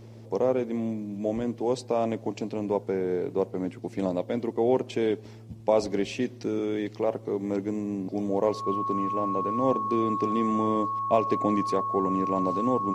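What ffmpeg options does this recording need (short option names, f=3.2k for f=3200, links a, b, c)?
-af "bandreject=f=112.1:t=h:w=4,bandreject=f=224.2:t=h:w=4,bandreject=f=336.3:t=h:w=4,bandreject=f=1.1k:w=30"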